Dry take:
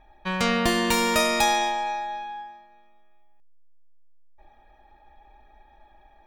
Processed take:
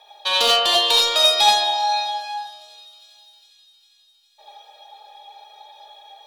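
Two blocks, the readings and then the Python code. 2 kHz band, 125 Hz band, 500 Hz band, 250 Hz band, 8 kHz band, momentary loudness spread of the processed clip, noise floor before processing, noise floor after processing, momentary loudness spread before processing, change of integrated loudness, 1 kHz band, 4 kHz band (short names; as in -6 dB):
0.0 dB, under -15 dB, +2.0 dB, under -15 dB, +3.0 dB, 14 LU, -56 dBFS, -58 dBFS, 14 LU, +7.0 dB, +4.5 dB, +14.0 dB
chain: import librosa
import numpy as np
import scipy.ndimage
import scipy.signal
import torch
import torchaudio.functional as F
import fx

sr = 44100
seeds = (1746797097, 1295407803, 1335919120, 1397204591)

p1 = fx.dereverb_blind(x, sr, rt60_s=0.85)
p2 = scipy.signal.sosfilt(scipy.signal.ellip(4, 1.0, 40, 450.0, 'highpass', fs=sr, output='sos'), p1)
p3 = fx.env_lowpass_down(p2, sr, base_hz=2900.0, full_db=-25.0)
p4 = fx.high_shelf_res(p3, sr, hz=2700.0, db=10.5, q=3.0)
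p5 = fx.rider(p4, sr, range_db=5, speed_s=0.5)
p6 = p4 + (p5 * librosa.db_to_amplitude(3.0))
p7 = 10.0 ** (-10.0 / 20.0) * np.tanh(p6 / 10.0 ** (-10.0 / 20.0))
p8 = p7 + fx.echo_wet_highpass(p7, sr, ms=405, feedback_pct=65, hz=3000.0, wet_db=-22, dry=0)
p9 = fx.rev_gated(p8, sr, seeds[0], gate_ms=110, shape='rising', drr_db=-3.0)
y = p9 * librosa.db_to_amplitude(-2.5)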